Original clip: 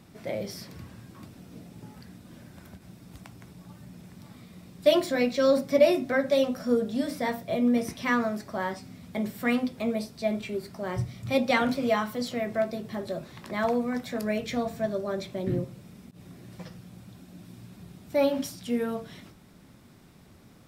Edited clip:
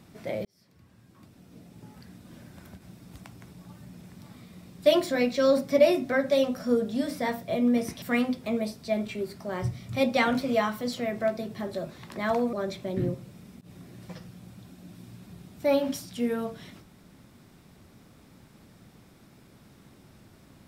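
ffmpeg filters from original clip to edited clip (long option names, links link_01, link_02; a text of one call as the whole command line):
ffmpeg -i in.wav -filter_complex "[0:a]asplit=4[link_01][link_02][link_03][link_04];[link_01]atrim=end=0.45,asetpts=PTS-STARTPTS,afade=type=out:start_time=0.446:duration=0.004:curve=hsin[link_05];[link_02]atrim=start=0.45:end=8.022,asetpts=PTS-STARTPTS,afade=type=in:duration=1.9[link_06];[link_03]atrim=start=9.358:end=13.872[link_07];[link_04]atrim=start=15.028[link_08];[link_05][link_06]concat=n=2:v=0:a=1[link_09];[link_09][link_07]acrossfade=duration=0.004:curve1=hsin:curve2=hsin[link_10];[link_10][link_08]acrossfade=duration=0.004:curve1=hsin:curve2=hsin" out.wav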